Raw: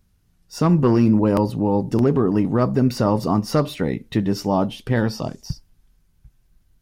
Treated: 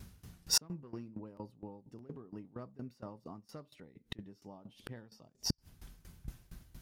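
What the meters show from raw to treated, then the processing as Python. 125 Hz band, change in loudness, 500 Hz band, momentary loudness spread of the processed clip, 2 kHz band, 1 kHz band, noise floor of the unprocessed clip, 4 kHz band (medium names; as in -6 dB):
-27.0 dB, -20.0 dB, -30.0 dB, 24 LU, -20.0 dB, -28.5 dB, -62 dBFS, -4.0 dB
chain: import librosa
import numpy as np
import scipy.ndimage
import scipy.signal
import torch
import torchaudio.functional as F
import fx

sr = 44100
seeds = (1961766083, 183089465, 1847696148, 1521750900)

y = scipy.signal.sosfilt(scipy.signal.butter(2, 49.0, 'highpass', fs=sr, output='sos'), x)
y = fx.gate_flip(y, sr, shuts_db=-24.0, range_db=-40)
y = fx.tremolo_decay(y, sr, direction='decaying', hz=4.3, depth_db=19)
y = y * 10.0 ** (16.5 / 20.0)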